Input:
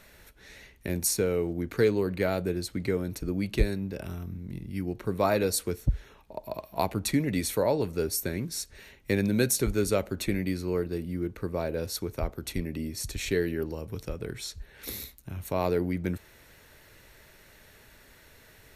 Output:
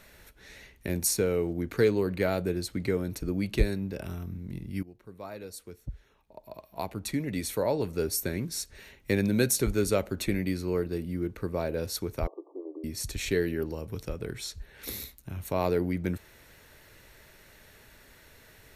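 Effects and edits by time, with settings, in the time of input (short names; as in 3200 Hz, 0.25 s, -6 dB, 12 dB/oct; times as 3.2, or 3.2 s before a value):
4.83–8.11 fade in quadratic, from -17.5 dB
12.27–12.84 brick-wall FIR band-pass 290–1200 Hz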